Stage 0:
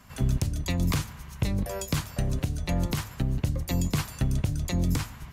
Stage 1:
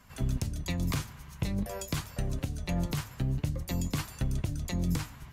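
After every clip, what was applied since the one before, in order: flange 0.47 Hz, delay 1.8 ms, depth 6.4 ms, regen +72%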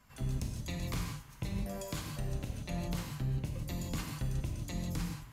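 non-linear reverb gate 0.2 s flat, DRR 1 dB; gain -7 dB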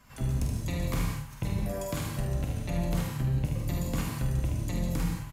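dynamic EQ 4400 Hz, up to -6 dB, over -60 dBFS, Q 0.88; on a send: early reflections 48 ms -6.5 dB, 75 ms -6 dB; on the sum: gain +5.5 dB

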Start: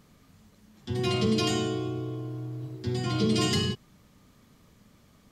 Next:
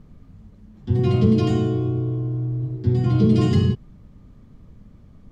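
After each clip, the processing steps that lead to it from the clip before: tilt -4 dB/oct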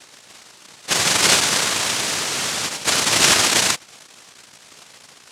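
hum 60 Hz, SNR 23 dB; noise vocoder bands 1; gain +1 dB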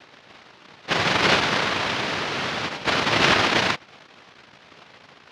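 air absorption 290 m; gain +2.5 dB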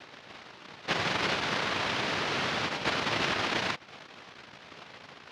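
compressor 6:1, threshold -27 dBFS, peak gain reduction 12.5 dB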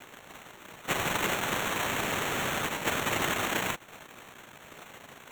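sample-and-hold 9×

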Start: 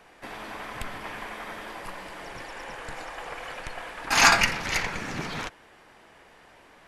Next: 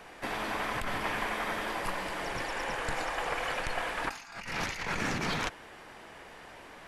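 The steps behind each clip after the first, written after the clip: negative-ratio compressor -35 dBFS, ratio -1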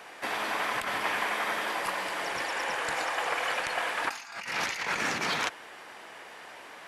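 HPF 580 Hz 6 dB/oct; gain +4.5 dB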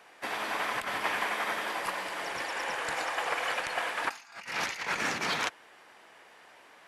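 upward expander 1.5:1, over -45 dBFS

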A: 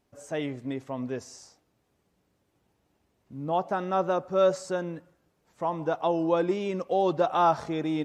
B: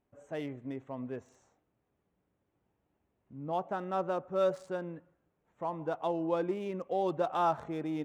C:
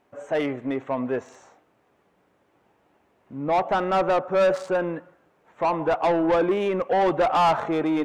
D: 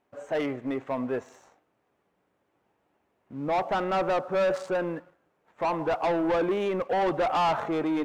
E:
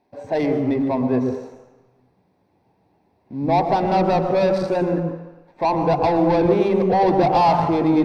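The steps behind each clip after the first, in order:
Wiener smoothing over 9 samples; gain -6.5 dB
overdrive pedal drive 21 dB, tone 2600 Hz, clips at -18.5 dBFS; gain +6 dB
sample leveller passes 1; gain -6.5 dB
reverb RT60 1.0 s, pre-delay 0.114 s, DRR 6 dB

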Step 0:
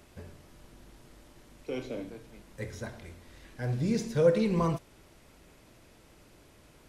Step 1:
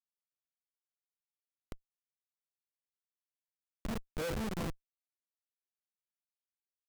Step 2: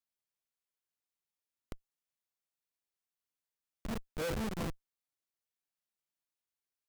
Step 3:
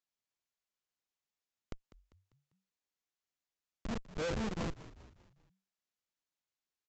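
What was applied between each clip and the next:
Wiener smoothing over 41 samples; resonant low shelf 140 Hz -13 dB, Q 1.5; Schmitt trigger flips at -24.5 dBFS; gain -1.5 dB
limiter -33.5 dBFS, peak gain reduction 4 dB; gain +1 dB
wow and flutter 28 cents; steep low-pass 7600 Hz 96 dB/oct; frequency-shifting echo 0.198 s, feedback 48%, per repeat -48 Hz, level -16 dB

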